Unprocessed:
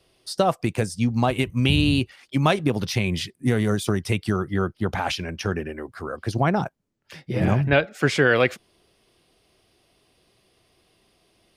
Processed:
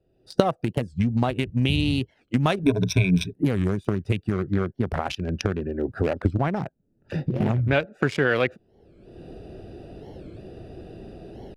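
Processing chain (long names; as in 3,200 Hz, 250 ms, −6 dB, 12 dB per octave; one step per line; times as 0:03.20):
adaptive Wiener filter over 41 samples
camcorder AGC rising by 38 dB per second
0:02.62–0:03.34: EQ curve with evenly spaced ripples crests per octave 1.6, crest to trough 18 dB
0:06.46–0:07.41: downward compressor, threshold −19 dBFS, peak gain reduction 7 dB
wow of a warped record 45 rpm, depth 250 cents
level −3 dB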